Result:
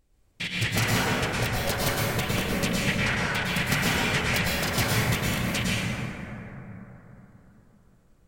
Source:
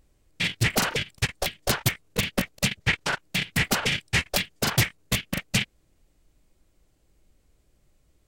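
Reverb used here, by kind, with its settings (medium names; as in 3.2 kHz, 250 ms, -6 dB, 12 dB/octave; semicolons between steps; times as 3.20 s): plate-style reverb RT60 3.9 s, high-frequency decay 0.3×, pre-delay 95 ms, DRR -7 dB; trim -6 dB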